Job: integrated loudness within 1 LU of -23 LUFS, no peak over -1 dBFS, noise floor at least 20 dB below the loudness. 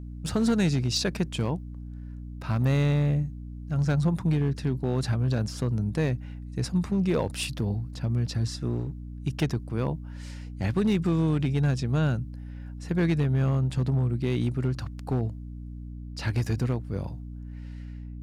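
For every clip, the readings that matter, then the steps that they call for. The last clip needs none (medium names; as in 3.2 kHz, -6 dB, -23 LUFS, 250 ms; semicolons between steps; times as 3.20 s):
clipped samples 1.0%; clipping level -18.0 dBFS; hum 60 Hz; highest harmonic 300 Hz; hum level -37 dBFS; loudness -27.5 LUFS; peak level -18.0 dBFS; loudness target -23.0 LUFS
-> clip repair -18 dBFS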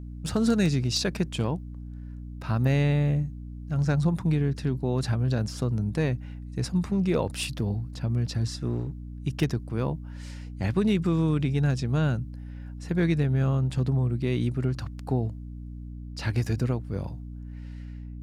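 clipped samples 0.0%; hum 60 Hz; highest harmonic 300 Hz; hum level -36 dBFS
-> hum notches 60/120/180/240/300 Hz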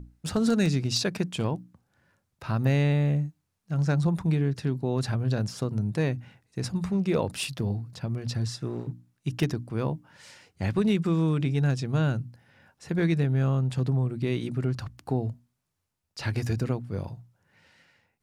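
hum not found; loudness -28.0 LUFS; peak level -12.5 dBFS; loudness target -23.0 LUFS
-> trim +5 dB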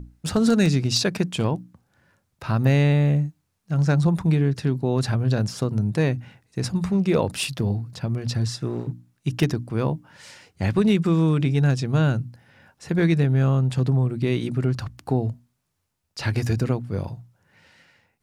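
loudness -23.0 LUFS; peak level -7.5 dBFS; noise floor -74 dBFS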